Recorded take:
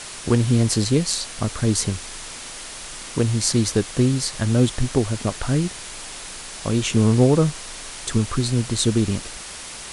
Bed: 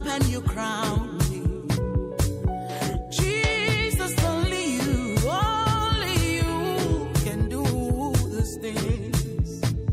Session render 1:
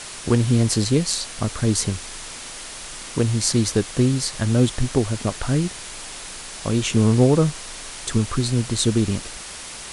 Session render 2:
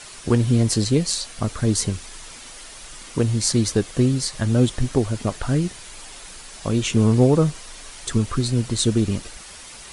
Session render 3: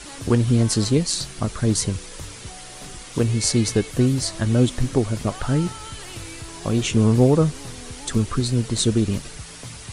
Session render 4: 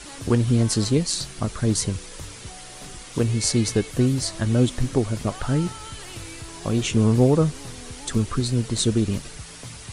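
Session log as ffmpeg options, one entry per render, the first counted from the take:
-af anull
-af "afftdn=nr=7:nf=-36"
-filter_complex "[1:a]volume=0.188[s0];[0:a][s0]amix=inputs=2:normalize=0"
-af "volume=0.841"

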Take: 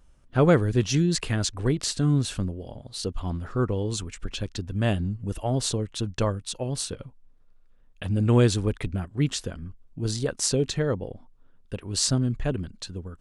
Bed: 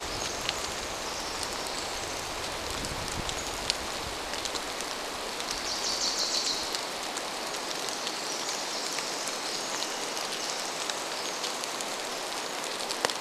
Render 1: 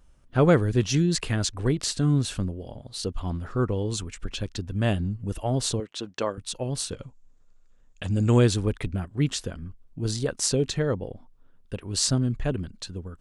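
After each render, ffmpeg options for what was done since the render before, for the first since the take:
-filter_complex "[0:a]asettb=1/sr,asplit=3[s0][s1][s2];[s0]atrim=end=5.804[s3];[s1]atrim=start=5.8:end=6.38,asetpts=PTS-STARTPTS,afade=t=in:d=0.004:c=qsin,afade=t=out:st=0.576:d=0.004:c=qsin,highpass=300,lowpass=6600[s4];[s2]atrim=start=6.376[s5];[s3][s4]acrossfade=d=0.004:c1=hsin:c2=qsin[s6];[s6][s5]acrossfade=d=0.004:c1=qsin:c2=hsin,asettb=1/sr,asplit=3[s7][s8][s9];[s7]atrim=end=6.914[s10];[s8]atrim=start=6.91:end=8.39,asetpts=PTS-STARTPTS,afade=t=in:d=0.004:c=qsin,afade=t=out:st=1.476:d=0.004:c=qsin,lowpass=f=7100:t=q:w=5.9[s11];[s9]atrim=start=8.386[s12];[s10][s11]acrossfade=d=0.004:c1=hsin:c2=qsin[s13];[s13][s12]acrossfade=d=0.004:c1=qsin:c2=hsin"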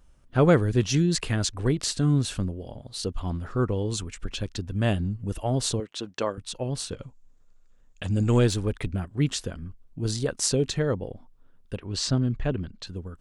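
-filter_complex "[0:a]asettb=1/sr,asplit=3[s0][s1][s2];[s0]atrim=end=6.404[s3];[s1]atrim=start=6.4:end=7.02,asetpts=PTS-STARTPTS,afade=t=in:d=0.004:c=qsin,afade=t=out:st=0.616:d=0.004:c=qsin,highshelf=f=6700:g=-6.5[s4];[s2]atrim=start=7.016[s5];[s3][s4]acrossfade=d=0.004:c1=hsin:c2=qsin[s6];[s6][s5]acrossfade=d=0.004:c1=qsin:c2=hsin,asettb=1/sr,asplit=3[s7][s8][s9];[s7]atrim=end=8.234[s10];[s8]atrim=start=8.23:end=8.75,asetpts=PTS-STARTPTS,afade=t=in:d=0.004:c=qsin,afade=t=out:st=0.516:d=0.004:c=qsin,aeval=exprs='if(lt(val(0),0),0.708*val(0),val(0))':c=same[s11];[s9]atrim=start=8.746[s12];[s10][s11]acrossfade=d=0.004:c1=hsin:c2=qsin[s13];[s13][s12]acrossfade=d=0.004:c1=qsin:c2=hsin,asettb=1/sr,asplit=3[s14][s15][s16];[s14]atrim=end=11.784[s17];[s15]atrim=start=11.78:end=12.87,asetpts=PTS-STARTPTS,afade=t=in:d=0.004:c=qsin,afade=t=out:st=1.086:d=0.004:c=qsin,lowpass=4900[s18];[s16]atrim=start=12.866[s19];[s17][s18]acrossfade=d=0.004:c1=hsin:c2=qsin[s20];[s20][s19]acrossfade=d=0.004:c1=qsin:c2=hsin"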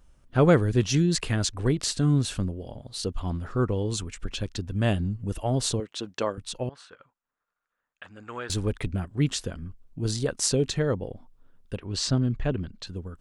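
-filter_complex "[0:a]asettb=1/sr,asplit=3[s0][s1][s2];[s0]atrim=end=6.694[s3];[s1]atrim=start=6.69:end=8.5,asetpts=PTS-STARTPTS,afade=t=in:d=0.004:c=qsin,afade=t=out:st=1.806:d=0.004:c=qsin,bandpass=f=1400:t=q:w=2[s4];[s2]atrim=start=8.496[s5];[s3][s4]acrossfade=d=0.004:c1=hsin:c2=qsin[s6];[s6][s5]acrossfade=d=0.004:c1=qsin:c2=hsin"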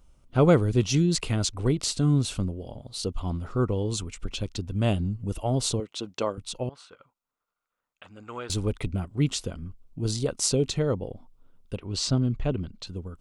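-af "equalizer=f=1700:t=o:w=0.21:g=-13.5"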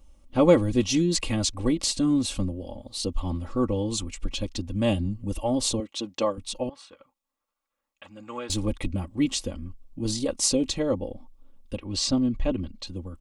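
-af "bandreject=f=1400:w=7.2,aecho=1:1:3.6:0.8"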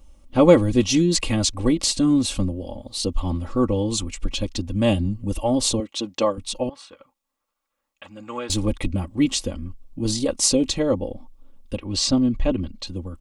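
-af "volume=1.68"

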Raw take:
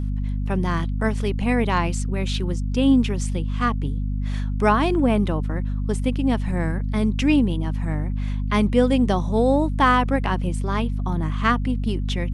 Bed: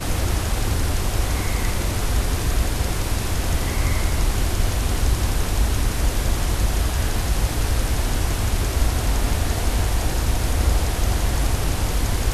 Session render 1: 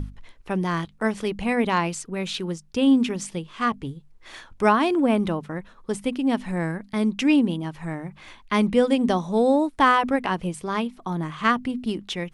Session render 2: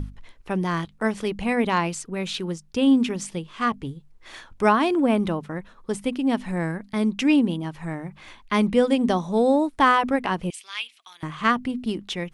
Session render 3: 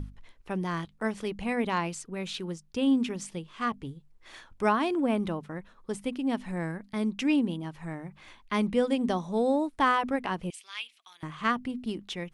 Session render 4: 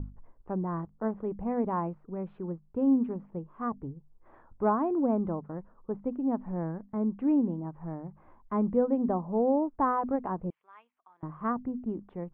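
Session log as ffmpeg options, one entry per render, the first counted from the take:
-af "bandreject=f=50:t=h:w=6,bandreject=f=100:t=h:w=6,bandreject=f=150:t=h:w=6,bandreject=f=200:t=h:w=6,bandreject=f=250:t=h:w=6"
-filter_complex "[0:a]asettb=1/sr,asplit=3[s0][s1][s2];[s0]atrim=end=10.504[s3];[s1]atrim=start=10.5:end=11.23,asetpts=PTS-STARTPTS,afade=t=in:d=0.004:c=qsin,afade=t=out:st=0.726:d=0.004:c=qsin,highpass=f=2700:t=q:w=2.5[s4];[s2]atrim=start=11.226[s5];[s3][s4]acrossfade=d=0.004:c1=hsin:c2=qsin[s6];[s6][s5]acrossfade=d=0.004:c1=qsin:c2=hsin"
-af "volume=0.473"
-af "lowpass=f=1100:w=0.5412,lowpass=f=1100:w=1.3066"

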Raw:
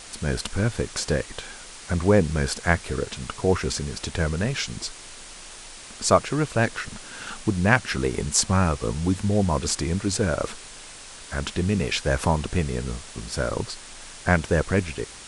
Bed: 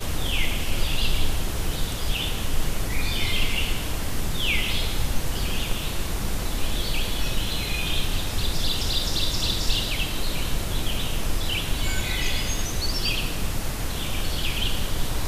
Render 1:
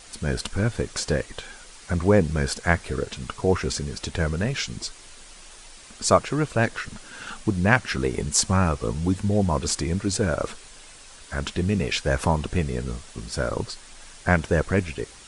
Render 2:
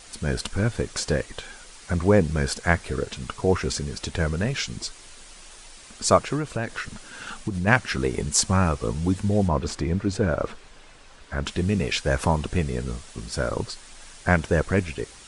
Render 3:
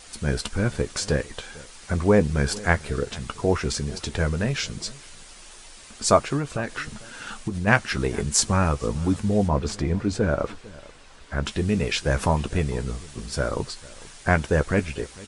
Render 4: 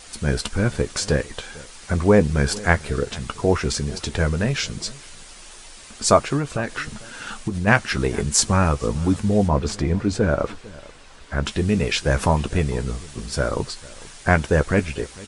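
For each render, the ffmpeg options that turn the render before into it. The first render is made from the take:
-af "afftdn=nr=6:nf=-42"
-filter_complex "[0:a]asplit=3[s0][s1][s2];[s0]afade=t=out:st=6.36:d=0.02[s3];[s1]acompressor=threshold=0.0794:ratio=6:attack=3.2:release=140:knee=1:detection=peak,afade=t=in:st=6.36:d=0.02,afade=t=out:st=7.66:d=0.02[s4];[s2]afade=t=in:st=7.66:d=0.02[s5];[s3][s4][s5]amix=inputs=3:normalize=0,asettb=1/sr,asplit=3[s6][s7][s8];[s6]atrim=end=9.484[s9];[s7]atrim=start=9.48:end=11.46,asetpts=PTS-STARTPTS,afade=t=in:d=0.004:c=qsin,afade=t=out:st=1.976:d=0.004:c=qsin,aemphasis=mode=reproduction:type=75fm[s10];[s8]atrim=start=11.456[s11];[s9][s10]acrossfade=d=0.004:c1=hsin:c2=qsin[s12];[s12][s11]acrossfade=d=0.004:c1=qsin:c2=hsin"
-filter_complex "[0:a]asplit=2[s0][s1];[s1]adelay=14,volume=0.282[s2];[s0][s2]amix=inputs=2:normalize=0,asplit=2[s3][s4];[s4]adelay=449,volume=0.0891,highshelf=f=4000:g=-10.1[s5];[s3][s5]amix=inputs=2:normalize=0"
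-af "volume=1.41,alimiter=limit=0.891:level=0:latency=1"

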